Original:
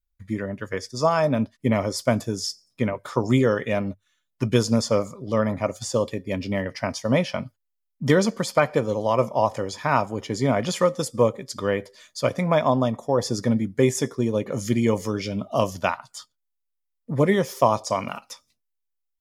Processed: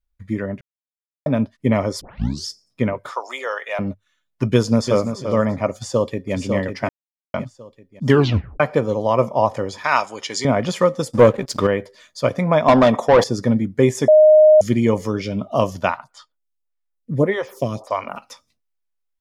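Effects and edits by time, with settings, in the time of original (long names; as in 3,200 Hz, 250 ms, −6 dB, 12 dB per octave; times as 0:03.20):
0:00.61–0:01.26: silence
0:02.01: tape start 0.45 s
0:03.11–0:03.79: high-pass filter 660 Hz 24 dB per octave
0:04.53–0:05.11: delay throw 340 ms, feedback 15%, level −8.5 dB
0:05.72–0:06.34: delay throw 550 ms, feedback 40%, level −6 dB
0:06.89–0:07.34: silence
0:08.08: tape stop 0.52 s
0:09.84–0:10.45: meter weighting curve ITU-R 468
0:11.11–0:11.67: leveller curve on the samples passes 2
0:12.68–0:13.24: mid-hump overdrive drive 22 dB, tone 5,500 Hz, clips at −7 dBFS
0:14.08–0:14.61: beep over 617 Hz −10 dBFS
0:16.04–0:18.16: phaser with staggered stages 1.7 Hz
whole clip: high-shelf EQ 4,300 Hz −8.5 dB; level +4 dB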